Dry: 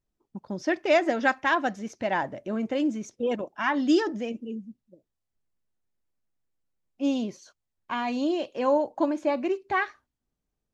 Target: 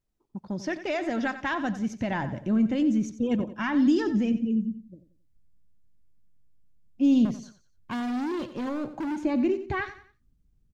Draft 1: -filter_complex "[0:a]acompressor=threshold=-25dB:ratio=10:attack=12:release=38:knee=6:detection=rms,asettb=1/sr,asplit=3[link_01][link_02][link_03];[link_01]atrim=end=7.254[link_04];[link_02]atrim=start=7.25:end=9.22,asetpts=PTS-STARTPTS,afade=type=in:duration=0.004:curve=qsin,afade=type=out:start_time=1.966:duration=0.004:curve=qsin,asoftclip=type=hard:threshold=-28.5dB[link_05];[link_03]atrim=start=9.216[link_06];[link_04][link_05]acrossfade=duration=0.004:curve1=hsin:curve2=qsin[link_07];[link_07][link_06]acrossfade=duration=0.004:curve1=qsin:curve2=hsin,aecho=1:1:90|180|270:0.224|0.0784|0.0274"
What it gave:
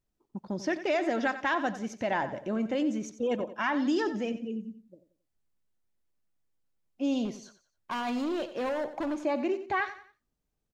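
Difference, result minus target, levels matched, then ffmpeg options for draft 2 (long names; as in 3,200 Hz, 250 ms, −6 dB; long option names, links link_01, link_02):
250 Hz band −3.0 dB
-filter_complex "[0:a]acompressor=threshold=-25dB:ratio=10:attack=12:release=38:knee=6:detection=rms,asubboost=boost=9.5:cutoff=200,asettb=1/sr,asplit=3[link_01][link_02][link_03];[link_01]atrim=end=7.254[link_04];[link_02]atrim=start=7.25:end=9.22,asetpts=PTS-STARTPTS,afade=type=in:duration=0.004:curve=qsin,afade=type=out:start_time=1.966:duration=0.004:curve=qsin,asoftclip=type=hard:threshold=-28.5dB[link_05];[link_03]atrim=start=9.216[link_06];[link_04][link_05]acrossfade=duration=0.004:curve1=hsin:curve2=qsin[link_07];[link_07][link_06]acrossfade=duration=0.004:curve1=qsin:curve2=hsin,aecho=1:1:90|180|270:0.224|0.0784|0.0274"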